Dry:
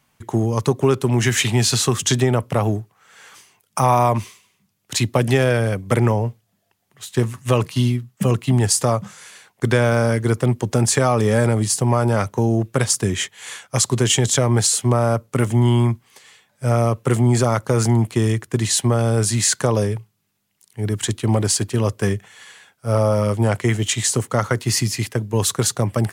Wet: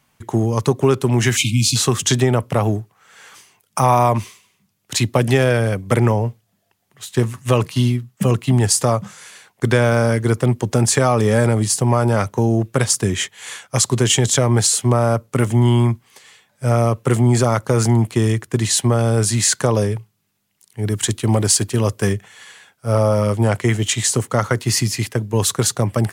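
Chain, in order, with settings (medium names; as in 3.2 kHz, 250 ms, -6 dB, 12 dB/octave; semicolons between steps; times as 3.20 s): 1.36–1.76 s: spectral selection erased 330–2100 Hz; 20.87–22.13 s: treble shelf 5.5 kHz +4.5 dB; trim +1.5 dB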